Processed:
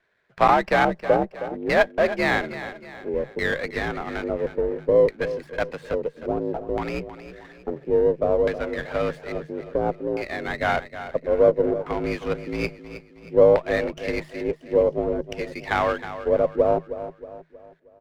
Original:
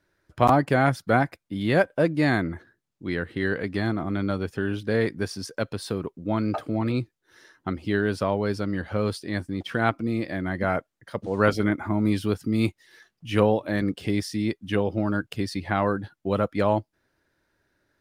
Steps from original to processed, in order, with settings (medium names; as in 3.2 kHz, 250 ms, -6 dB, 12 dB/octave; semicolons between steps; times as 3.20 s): high-pass 64 Hz 24 dB/octave; resonant low shelf 350 Hz -6.5 dB, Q 1.5; hum notches 50/100 Hz; frequency shift +55 Hz; dynamic bell 4.3 kHz, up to -5 dB, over -45 dBFS, Q 1.1; in parallel at -7.5 dB: Schmitt trigger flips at -22 dBFS; on the sum: LFO low-pass square 0.59 Hz 490–2400 Hz; on a send: feedback delay 316 ms, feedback 43%, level -12.5 dB; on the sum: sliding maximum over 5 samples